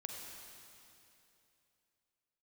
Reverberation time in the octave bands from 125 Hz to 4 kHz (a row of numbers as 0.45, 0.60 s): 3.0, 3.0, 3.0, 2.8, 2.8, 2.7 s